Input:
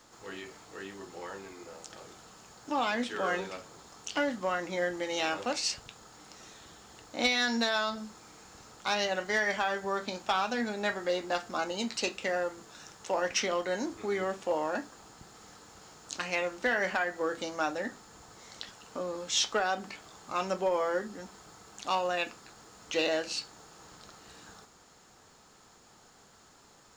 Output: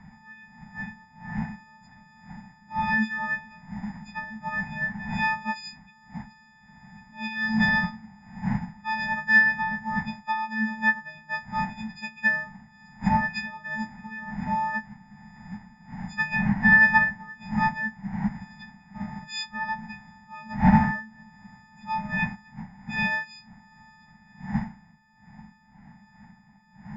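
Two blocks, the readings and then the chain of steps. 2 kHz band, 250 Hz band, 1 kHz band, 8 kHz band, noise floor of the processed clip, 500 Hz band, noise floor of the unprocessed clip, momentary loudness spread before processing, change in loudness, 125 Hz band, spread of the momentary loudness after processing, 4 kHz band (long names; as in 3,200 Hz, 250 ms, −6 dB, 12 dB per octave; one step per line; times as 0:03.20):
+10.5 dB, +9.5 dB, +5.0 dB, below −15 dB, −56 dBFS, −16.0 dB, −59 dBFS, 22 LU, +6.0 dB, +18.0 dB, 22 LU, −7.0 dB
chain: every partial snapped to a pitch grid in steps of 6 semitones
wind on the microphone 430 Hz −34 dBFS
drawn EQ curve 100 Hz 0 dB, 210 Hz +15 dB, 310 Hz −19 dB, 510 Hz −26 dB, 860 Hz +11 dB, 1,200 Hz −7 dB, 1,900 Hz +14 dB, 3,100 Hz −11 dB, 5,000 Hz −8 dB, 9,800 Hz −28 dB
amplitude tremolo 1.3 Hz, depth 50%
expander for the loud parts 1.5 to 1, over −35 dBFS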